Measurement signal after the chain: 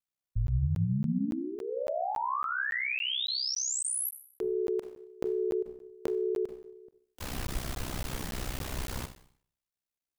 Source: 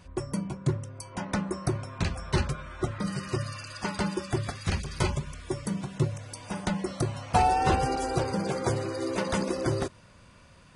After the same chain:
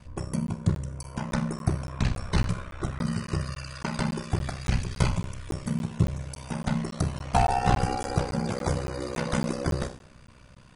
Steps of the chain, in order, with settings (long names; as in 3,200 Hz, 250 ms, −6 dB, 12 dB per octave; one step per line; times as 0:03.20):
four-comb reverb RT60 0.56 s, combs from 30 ms, DRR 9 dB
dynamic equaliser 370 Hz, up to −7 dB, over −40 dBFS, Q 2.1
ring modulation 32 Hz
low-shelf EQ 200 Hz +6.5 dB
regular buffer underruns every 0.28 s, samples 512, zero, from 0:00.47
level +2 dB